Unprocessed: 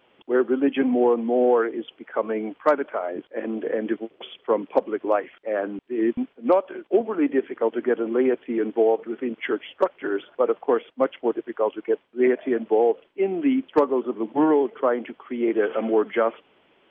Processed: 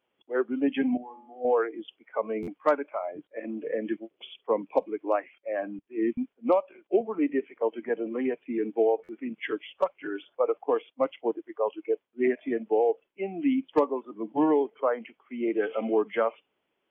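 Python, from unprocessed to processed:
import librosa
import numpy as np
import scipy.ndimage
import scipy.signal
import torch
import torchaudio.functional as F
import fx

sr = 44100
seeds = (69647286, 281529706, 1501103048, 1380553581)

y = fx.comb_fb(x, sr, f0_hz=50.0, decay_s=1.0, harmonics='all', damping=0.0, mix_pct=90, at=(0.97, 1.45))
y = fx.noise_reduce_blind(y, sr, reduce_db=14)
y = fx.buffer_glitch(y, sr, at_s=(2.42, 9.03), block=512, repeats=4)
y = y * librosa.db_to_amplitude(-4.0)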